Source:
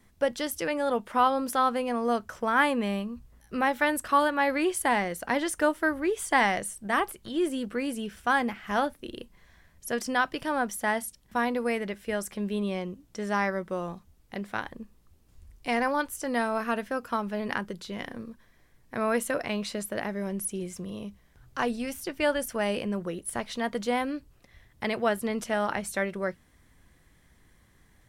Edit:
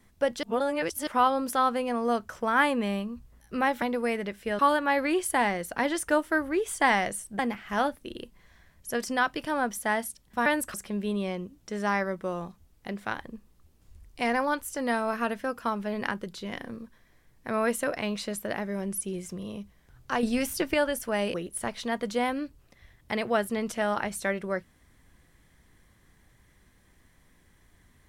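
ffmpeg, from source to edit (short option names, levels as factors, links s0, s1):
-filter_complex "[0:a]asplit=11[s0][s1][s2][s3][s4][s5][s6][s7][s8][s9][s10];[s0]atrim=end=0.432[s11];[s1]atrim=start=0.428:end=1.072,asetpts=PTS-STARTPTS,areverse[s12];[s2]atrim=start=1.068:end=3.822[s13];[s3]atrim=start=11.438:end=12.212[s14];[s4]atrim=start=4.098:end=6.902[s15];[s5]atrim=start=8.368:end=11.442[s16];[s6]atrim=start=3.818:end=4.102[s17];[s7]atrim=start=12.208:end=21.702[s18];[s8]atrim=start=21.698:end=22.212,asetpts=PTS-STARTPTS,volume=2[s19];[s9]atrim=start=22.208:end=22.812[s20];[s10]atrim=start=23.058[s21];[s11][s12]acrossfade=d=0.004:c1=hsin:c2=hsin[s22];[s22][s13]acrossfade=d=0.004:c1=hsin:c2=hsin[s23];[s23][s14]acrossfade=d=0.004:c1=hsin:c2=hsin[s24];[s24][s15]acrossfade=d=0.004:c1=hsin:c2=hsin[s25];[s25][s16]acrossfade=d=0.004:c1=hsin:c2=hsin[s26];[s26][s17]acrossfade=d=0.004:c1=hsin:c2=hsin[s27];[s27][s18]acrossfade=d=0.004:c1=hsin:c2=hsin[s28];[s28][s19]acrossfade=d=0.004:c1=hsin:c2=hsin[s29];[s29][s20]acrossfade=d=0.004:c1=hsin:c2=hsin[s30];[s30][s21]acrossfade=d=0.004:c1=hsin:c2=hsin"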